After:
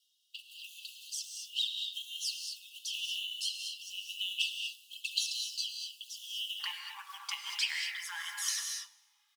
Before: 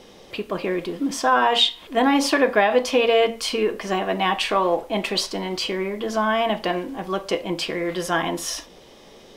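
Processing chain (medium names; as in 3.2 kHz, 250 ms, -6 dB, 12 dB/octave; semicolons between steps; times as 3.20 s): gate -34 dBFS, range -15 dB; compression 12:1, threshold -21 dBFS, peak gain reduction 9.5 dB; companded quantiser 6-bit; rotary cabinet horn 0.9 Hz; touch-sensitive flanger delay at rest 2.5 ms, full sweep at -23.5 dBFS; brick-wall FIR high-pass 2.6 kHz, from 6.59 s 800 Hz; feedback delay 103 ms, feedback 54%, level -23.5 dB; gated-style reverb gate 260 ms rising, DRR 4 dB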